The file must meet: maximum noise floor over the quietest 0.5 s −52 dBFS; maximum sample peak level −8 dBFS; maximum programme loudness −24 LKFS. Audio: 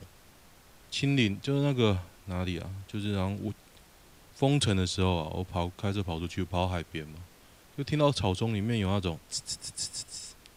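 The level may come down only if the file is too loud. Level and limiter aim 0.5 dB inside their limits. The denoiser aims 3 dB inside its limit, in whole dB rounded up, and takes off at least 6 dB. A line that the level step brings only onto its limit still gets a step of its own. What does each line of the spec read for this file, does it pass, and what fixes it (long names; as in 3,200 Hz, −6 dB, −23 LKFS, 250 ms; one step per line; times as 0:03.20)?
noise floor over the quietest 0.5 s −56 dBFS: in spec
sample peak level −11.5 dBFS: in spec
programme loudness −30.5 LKFS: in spec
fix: no processing needed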